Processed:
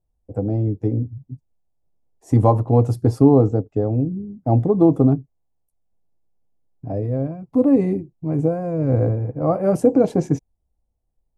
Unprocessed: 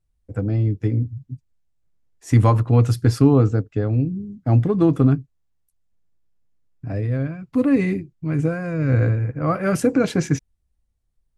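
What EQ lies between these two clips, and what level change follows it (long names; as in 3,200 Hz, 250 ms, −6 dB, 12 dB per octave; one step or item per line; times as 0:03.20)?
drawn EQ curve 120 Hz 0 dB, 810 Hz +9 dB, 1,500 Hz −13 dB, 3,300 Hz −12 dB, 9,000 Hz −5 dB
−2.0 dB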